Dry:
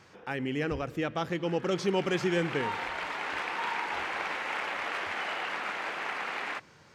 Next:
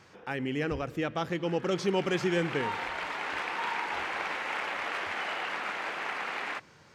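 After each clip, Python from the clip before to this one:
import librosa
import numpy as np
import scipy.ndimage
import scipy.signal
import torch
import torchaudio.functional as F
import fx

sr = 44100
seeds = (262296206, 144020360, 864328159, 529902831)

y = x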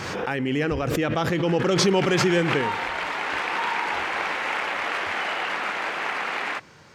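y = fx.pre_swell(x, sr, db_per_s=24.0)
y = F.gain(torch.from_numpy(y), 6.5).numpy()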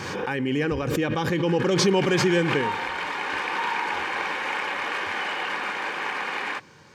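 y = fx.notch_comb(x, sr, f0_hz=670.0)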